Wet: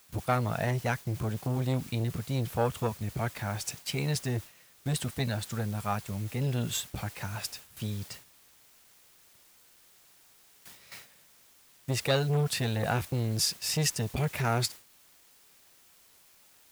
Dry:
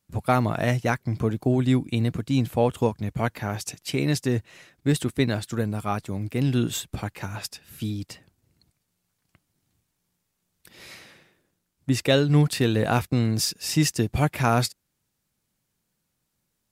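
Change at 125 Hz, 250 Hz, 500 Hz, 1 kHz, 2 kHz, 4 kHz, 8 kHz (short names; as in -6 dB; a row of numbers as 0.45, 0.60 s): -5.5, -10.5, -7.5, -6.0, -5.0, -3.5, -2.0 dB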